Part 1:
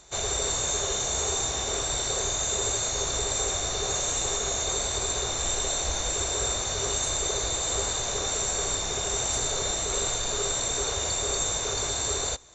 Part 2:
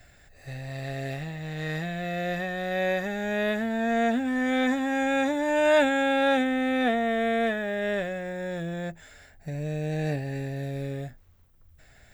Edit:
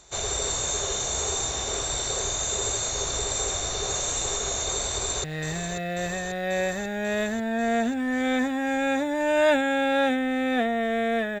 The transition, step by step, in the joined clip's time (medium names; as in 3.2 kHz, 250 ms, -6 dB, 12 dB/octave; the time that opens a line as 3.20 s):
part 1
4.88–5.24 s: echo throw 540 ms, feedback 75%, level -8 dB
5.24 s: go over to part 2 from 1.52 s